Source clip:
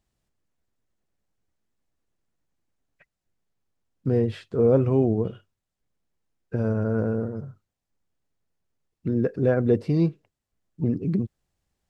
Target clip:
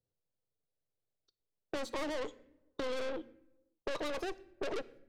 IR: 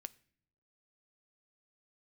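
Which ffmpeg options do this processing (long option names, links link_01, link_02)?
-filter_complex "[0:a]asetrate=103194,aresample=44100,aemphasis=mode=reproduction:type=cd,agate=range=-17dB:threshold=-47dB:ratio=16:detection=peak,equalizer=frequency=125:width_type=o:width=1:gain=5,equalizer=frequency=250:width_type=o:width=1:gain=-5,equalizer=frequency=500:width_type=o:width=1:gain=9,equalizer=frequency=1000:width_type=o:width=1:gain=-4,equalizer=frequency=2000:width_type=o:width=1:gain=-10,equalizer=frequency=4000:width_type=o:width=1:gain=8,aeval=exprs='(tanh(28.2*val(0)+0.4)-tanh(0.4))/28.2':channel_layout=same[link_01];[1:a]atrim=start_sample=2205[link_02];[link_01][link_02]afir=irnorm=-1:irlink=0,acrossover=split=83|2800[link_03][link_04][link_05];[link_03]acompressor=threshold=-50dB:ratio=4[link_06];[link_04]acompressor=threshold=-45dB:ratio=4[link_07];[link_05]acompressor=threshold=-54dB:ratio=4[link_08];[link_06][link_07][link_08]amix=inputs=3:normalize=0,volume=8dB"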